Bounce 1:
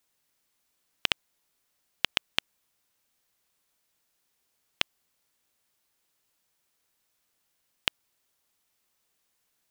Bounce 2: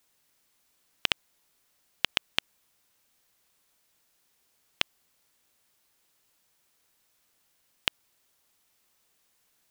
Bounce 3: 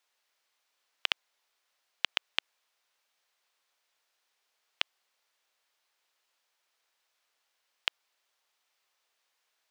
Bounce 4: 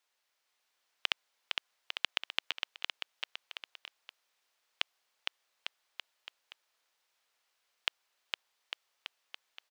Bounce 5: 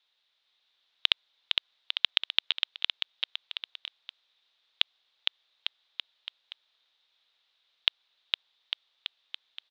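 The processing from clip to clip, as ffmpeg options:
ffmpeg -i in.wav -af "alimiter=level_in=6dB:limit=-1dB:release=50:level=0:latency=1,volume=-1dB" out.wav
ffmpeg -i in.wav -filter_complex "[0:a]acrossover=split=460 5900:gain=0.0708 1 0.251[link_01][link_02][link_03];[link_01][link_02][link_03]amix=inputs=3:normalize=0,volume=-2.5dB" out.wav
ffmpeg -i in.wav -af "aecho=1:1:460|851|1183|1466|1706:0.631|0.398|0.251|0.158|0.1,volume=-2.5dB" out.wav
ffmpeg -i in.wav -af "lowpass=frequency=3700:width_type=q:width=6.5,volume=-1dB" out.wav

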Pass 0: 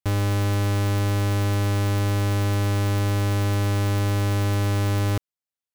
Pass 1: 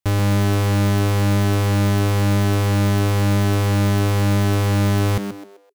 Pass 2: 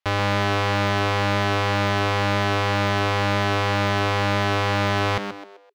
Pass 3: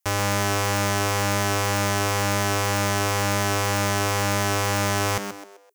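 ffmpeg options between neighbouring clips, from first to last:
ffmpeg -i in.wav -filter_complex "[0:a]asplit=5[link_01][link_02][link_03][link_04][link_05];[link_02]adelay=129,afreqshift=99,volume=-9dB[link_06];[link_03]adelay=258,afreqshift=198,volume=-18.4dB[link_07];[link_04]adelay=387,afreqshift=297,volume=-27.7dB[link_08];[link_05]adelay=516,afreqshift=396,volume=-37.1dB[link_09];[link_01][link_06][link_07][link_08][link_09]amix=inputs=5:normalize=0,volume=4dB" out.wav
ffmpeg -i in.wav -filter_complex "[0:a]acrossover=split=530 4900:gain=0.2 1 0.0794[link_01][link_02][link_03];[link_01][link_02][link_03]amix=inputs=3:normalize=0,volume=5.5dB" out.wav
ffmpeg -i in.wav -af "aexciter=amount=9.4:drive=2.6:freq=5700,volume=-2dB" out.wav

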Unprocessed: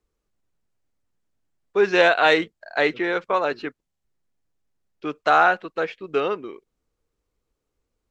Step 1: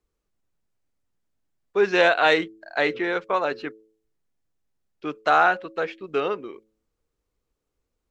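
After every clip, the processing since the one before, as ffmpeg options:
ffmpeg -i in.wav -af "bandreject=frequency=109.2:width_type=h:width=4,bandreject=frequency=218.4:width_type=h:width=4,bandreject=frequency=327.6:width_type=h:width=4,bandreject=frequency=436.8:width_type=h:width=4,bandreject=frequency=546:width_type=h:width=4,volume=-1.5dB" out.wav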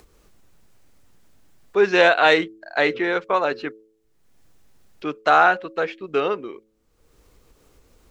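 ffmpeg -i in.wav -af "acompressor=mode=upward:threshold=-40dB:ratio=2.5,volume=3dB" out.wav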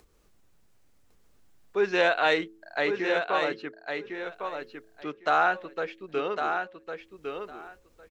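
ffmpeg -i in.wav -af "aecho=1:1:1105|2210|3315:0.501|0.0752|0.0113,volume=-8dB" out.wav

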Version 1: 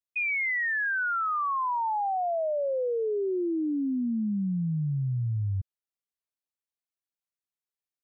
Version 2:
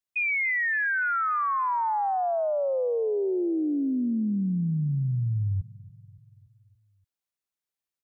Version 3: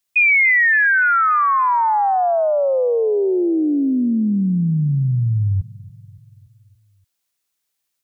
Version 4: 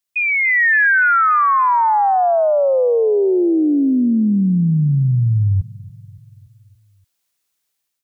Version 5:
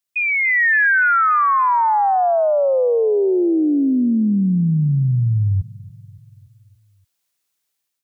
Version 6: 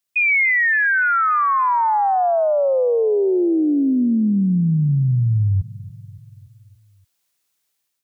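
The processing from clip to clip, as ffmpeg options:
ffmpeg -i in.wav -af "aecho=1:1:286|572|858|1144|1430:0.0891|0.0526|0.031|0.0183|0.0108,volume=2dB" out.wav
ffmpeg -i in.wav -af "highshelf=frequency=2100:gain=7.5,volume=8.5dB" out.wav
ffmpeg -i in.wav -af "dynaudnorm=framelen=210:gausssize=5:maxgain=8dB,volume=-5dB" out.wav
ffmpeg -i in.wav -af "highpass=59,volume=-1.5dB" out.wav
ffmpeg -i in.wav -af "alimiter=limit=-15.5dB:level=0:latency=1:release=160,volume=2.5dB" out.wav

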